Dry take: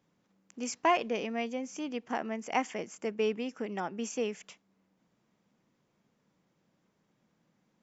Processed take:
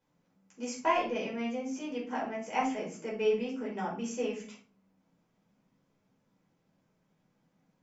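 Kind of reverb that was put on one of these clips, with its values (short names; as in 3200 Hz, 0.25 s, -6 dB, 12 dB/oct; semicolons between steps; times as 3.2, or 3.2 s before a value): shoebox room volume 350 m³, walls furnished, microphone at 4.9 m; gain -9.5 dB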